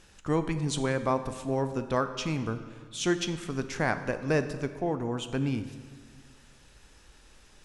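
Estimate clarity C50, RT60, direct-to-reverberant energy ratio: 11.0 dB, 1.7 s, 9.5 dB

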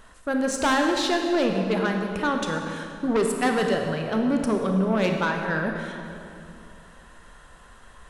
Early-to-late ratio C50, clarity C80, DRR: 4.0 dB, 5.0 dB, 3.0 dB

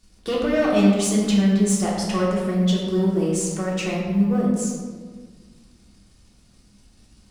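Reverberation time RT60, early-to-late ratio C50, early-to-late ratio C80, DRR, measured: 1.6 s, 0.5 dB, 2.5 dB, -5.0 dB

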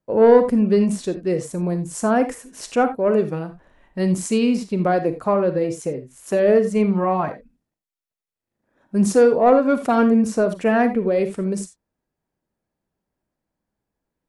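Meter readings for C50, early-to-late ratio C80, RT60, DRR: 11.0 dB, 16.5 dB, not exponential, 9.0 dB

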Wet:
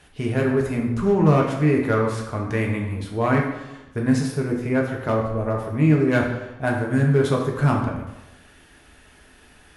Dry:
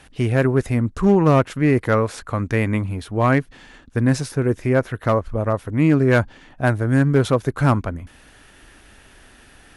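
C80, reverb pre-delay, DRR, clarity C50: 7.0 dB, 3 ms, -1.0 dB, 4.5 dB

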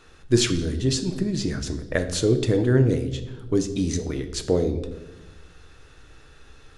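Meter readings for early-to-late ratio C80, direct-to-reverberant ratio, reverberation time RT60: 14.0 dB, 6.5 dB, 1.1 s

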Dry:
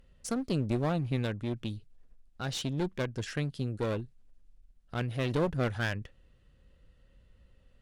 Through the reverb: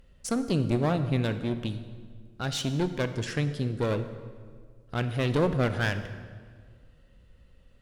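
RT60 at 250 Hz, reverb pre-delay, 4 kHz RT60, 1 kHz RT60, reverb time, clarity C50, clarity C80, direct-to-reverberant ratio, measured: 2.2 s, 30 ms, 1.3 s, 1.7 s, 1.8 s, 11.0 dB, 12.0 dB, 10.0 dB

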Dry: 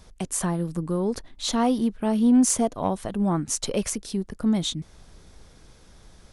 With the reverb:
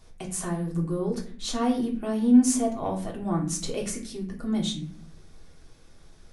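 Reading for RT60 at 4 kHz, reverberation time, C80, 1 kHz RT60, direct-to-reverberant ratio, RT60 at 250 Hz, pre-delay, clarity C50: 0.35 s, 0.55 s, 12.0 dB, 0.45 s, -2.0 dB, 0.90 s, 3 ms, 8.5 dB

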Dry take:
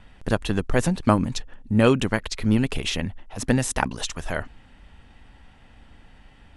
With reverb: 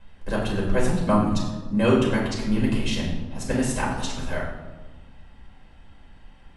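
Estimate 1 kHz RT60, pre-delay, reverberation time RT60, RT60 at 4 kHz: 1.2 s, 4 ms, 1.3 s, 0.75 s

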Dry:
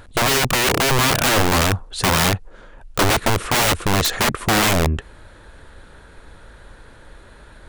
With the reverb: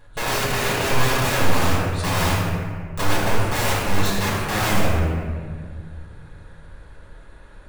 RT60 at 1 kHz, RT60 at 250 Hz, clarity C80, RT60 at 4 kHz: 1.7 s, 2.8 s, 0.0 dB, 1.0 s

